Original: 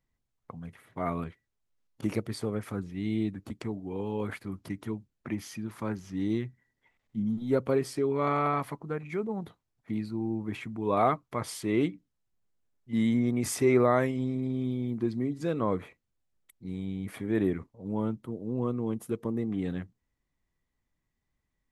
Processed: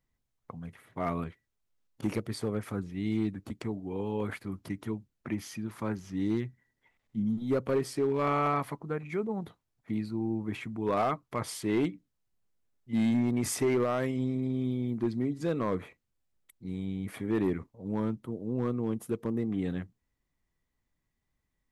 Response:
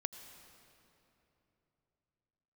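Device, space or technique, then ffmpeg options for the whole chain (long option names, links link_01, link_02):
limiter into clipper: -af "alimiter=limit=-16.5dB:level=0:latency=1:release=154,asoftclip=type=hard:threshold=-21.5dB"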